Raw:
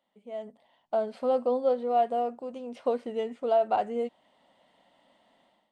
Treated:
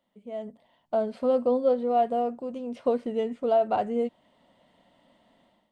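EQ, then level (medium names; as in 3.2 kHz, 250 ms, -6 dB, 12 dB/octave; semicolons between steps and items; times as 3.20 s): bass shelf 260 Hz +11.5 dB; band-stop 800 Hz, Q 12; 0.0 dB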